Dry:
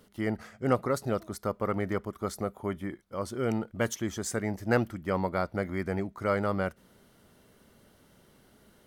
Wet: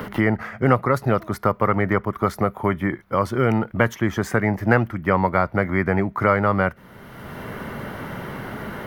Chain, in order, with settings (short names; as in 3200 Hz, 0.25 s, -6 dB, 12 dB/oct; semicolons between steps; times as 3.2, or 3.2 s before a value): graphic EQ 125/1000/2000/4000/8000 Hz +6/+6/+7/-4/-12 dB; three-band squash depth 70%; gain +7 dB